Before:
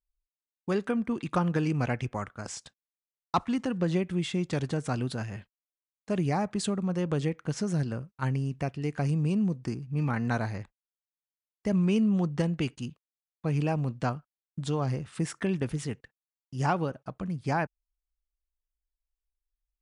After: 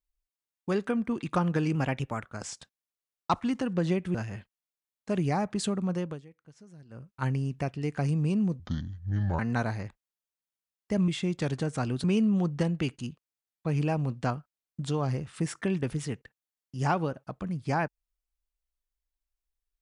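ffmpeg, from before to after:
ffmpeg -i in.wav -filter_complex "[0:a]asplit=10[link_01][link_02][link_03][link_04][link_05][link_06][link_07][link_08][link_09][link_10];[link_01]atrim=end=1.754[link_11];[link_02]atrim=start=1.75:end=2.28,asetpts=PTS-STARTPTS,asetrate=48069,aresample=44100,atrim=end_sample=21443,asetpts=PTS-STARTPTS[link_12];[link_03]atrim=start=2.276:end=4.192[link_13];[link_04]atrim=start=5.148:end=7.22,asetpts=PTS-STARTPTS,afade=type=out:start_time=1.792:duration=0.28:silence=0.0749894[link_14];[link_05]atrim=start=7.22:end=7.89,asetpts=PTS-STARTPTS,volume=-22.5dB[link_15];[link_06]atrim=start=7.89:end=9.604,asetpts=PTS-STARTPTS,afade=type=in:duration=0.28:silence=0.0749894[link_16];[link_07]atrim=start=9.6:end=10.14,asetpts=PTS-STARTPTS,asetrate=29988,aresample=44100[link_17];[link_08]atrim=start=10.136:end=11.832[link_18];[link_09]atrim=start=4.188:end=5.152[link_19];[link_10]atrim=start=11.828[link_20];[link_11][link_12]acrossfade=duration=0.004:curve1=hsin:curve2=hsin[link_21];[link_21][link_13]acrossfade=duration=0.004:curve1=hsin:curve2=hsin[link_22];[link_14][link_15][link_16]concat=n=3:v=0:a=1[link_23];[link_22][link_23]acrossfade=duration=0.004:curve1=hsin:curve2=hsin[link_24];[link_24][link_17]acrossfade=duration=0.004:curve1=hsin:curve2=hsin[link_25];[link_25][link_18]acrossfade=duration=0.004:curve1=hsin:curve2=hsin[link_26];[link_26][link_19]acrossfade=duration=0.004:curve1=hsin:curve2=hsin[link_27];[link_27][link_20]acrossfade=duration=0.004:curve1=hsin:curve2=hsin" out.wav

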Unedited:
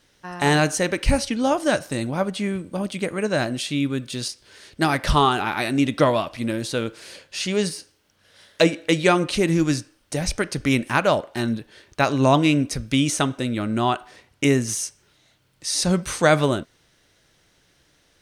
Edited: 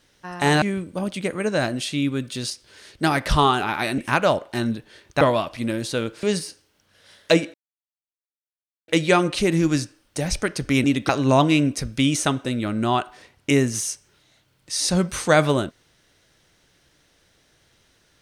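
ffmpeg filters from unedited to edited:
ffmpeg -i in.wav -filter_complex "[0:a]asplit=8[link_01][link_02][link_03][link_04][link_05][link_06][link_07][link_08];[link_01]atrim=end=0.622[link_09];[link_02]atrim=start=2.398:end=5.762[link_10];[link_03]atrim=start=10.798:end=12.032[link_11];[link_04]atrim=start=6.008:end=7.032[link_12];[link_05]atrim=start=7.528:end=8.84,asetpts=PTS-STARTPTS,afade=type=out:start_time=1.308:duration=0.004:curve=hsin,apad=pad_dur=1.34[link_13];[link_06]atrim=start=8.84:end=10.802,asetpts=PTS-STARTPTS,afade=type=in:duration=0.004:curve=hsin[link_14];[link_07]atrim=start=5.758:end=6.012[link_15];[link_08]atrim=start=12.028[link_16];[link_09][link_10]acrossfade=duration=0.004:curve1=hsin:curve2=hsin[link_17];[link_17][link_11]acrossfade=duration=0.004:curve1=hsin:curve2=hsin[link_18];[link_18][link_12]acrossfade=duration=0.004:curve1=hsin:curve2=hsin[link_19];[link_13][link_14]concat=n=2:v=0:a=1[link_20];[link_19][link_20]acrossfade=duration=0.004:curve1=hsin:curve2=hsin[link_21];[link_21][link_15]acrossfade=duration=0.004:curve1=hsin:curve2=hsin[link_22];[link_22][link_16]acrossfade=duration=0.004:curve1=hsin:curve2=hsin" out.wav

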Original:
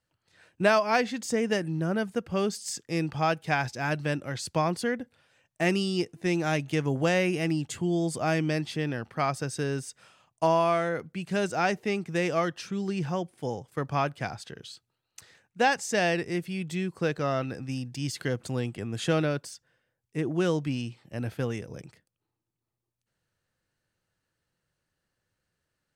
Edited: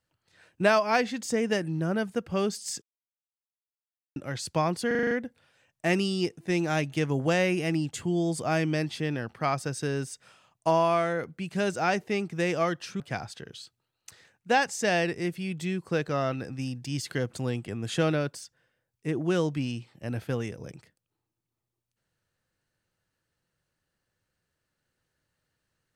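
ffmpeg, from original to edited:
ffmpeg -i in.wav -filter_complex "[0:a]asplit=10[link_01][link_02][link_03][link_04][link_05][link_06][link_07][link_08][link_09][link_10];[link_01]atrim=end=2.82,asetpts=PTS-STARTPTS,afade=type=out:start_time=2.816:duration=0.004:curve=hsin[link_11];[link_02]atrim=start=2.82:end=4.16,asetpts=PTS-STARTPTS,volume=0[link_12];[link_03]atrim=start=4.16:end=4.912,asetpts=PTS-STARTPTS,afade=type=in:duration=0.004:curve=hsin[link_13];[link_04]atrim=start=4.868:end=4.912[link_14];[link_05]atrim=start=4.868:end=4.912[link_15];[link_06]atrim=start=4.868:end=4.912[link_16];[link_07]atrim=start=4.868:end=4.912[link_17];[link_08]atrim=start=4.868:end=4.912[link_18];[link_09]atrim=start=4.868:end=12.762[link_19];[link_10]atrim=start=14.098[link_20];[link_11][link_12][link_13]concat=n=3:v=0:a=1[link_21];[link_21][link_14]acrossfade=duration=0.004:curve1=hsin:curve2=hsin[link_22];[link_22][link_15]acrossfade=duration=0.004:curve1=hsin:curve2=hsin[link_23];[link_23][link_16]acrossfade=duration=0.004:curve1=hsin:curve2=hsin[link_24];[link_24][link_17]acrossfade=duration=0.004:curve1=hsin:curve2=hsin[link_25];[link_25][link_18]acrossfade=duration=0.004:curve1=hsin:curve2=hsin[link_26];[link_26][link_19]acrossfade=duration=0.004:curve1=hsin:curve2=hsin[link_27];[link_27][link_20]acrossfade=duration=0.004:curve1=hsin:curve2=hsin" out.wav

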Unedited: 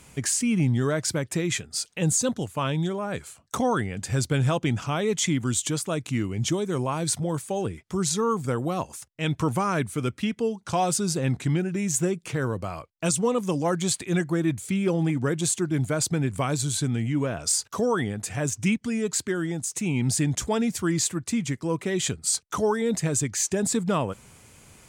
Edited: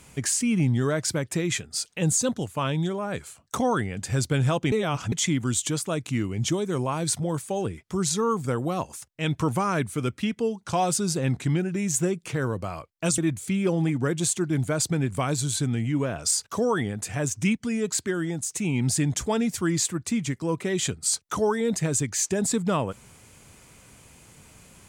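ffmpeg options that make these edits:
ffmpeg -i in.wav -filter_complex "[0:a]asplit=4[link_01][link_02][link_03][link_04];[link_01]atrim=end=4.722[link_05];[link_02]atrim=start=4.718:end=5.122,asetpts=PTS-STARTPTS,areverse[link_06];[link_03]atrim=start=5.118:end=13.182[link_07];[link_04]atrim=start=14.388[link_08];[link_05][link_06]acrossfade=duration=0.004:curve1=hsin:curve2=hsin[link_09];[link_09][link_07]acrossfade=duration=0.004:curve1=hsin:curve2=hsin[link_10];[link_10][link_08]acrossfade=duration=0.004:curve1=hsin:curve2=hsin" out.wav

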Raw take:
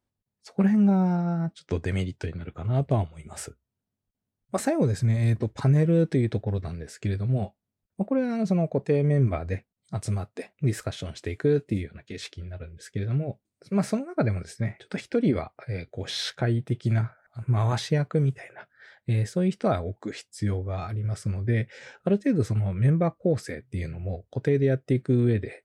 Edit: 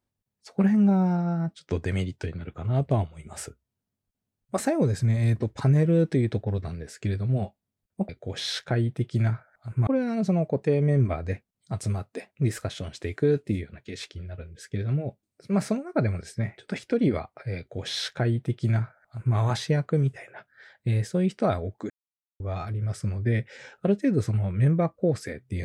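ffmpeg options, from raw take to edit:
ffmpeg -i in.wav -filter_complex "[0:a]asplit=5[link_01][link_02][link_03][link_04][link_05];[link_01]atrim=end=8.092[link_06];[link_02]atrim=start=15.798:end=17.582[link_07];[link_03]atrim=start=8.088:end=20.12,asetpts=PTS-STARTPTS,afade=type=out:start_time=12.028:duration=0.004:curve=hsin[link_08];[link_04]atrim=start=20.12:end=20.62,asetpts=PTS-STARTPTS,volume=0[link_09];[link_05]atrim=start=20.62,asetpts=PTS-STARTPTS,afade=type=in:duration=0.004:curve=hsin[link_10];[link_06][link_07]acrossfade=duration=0.004:curve1=hsin:curve2=hsin[link_11];[link_08][link_09][link_10]concat=n=3:v=0:a=1[link_12];[link_11][link_12]acrossfade=duration=0.004:curve1=hsin:curve2=hsin" out.wav

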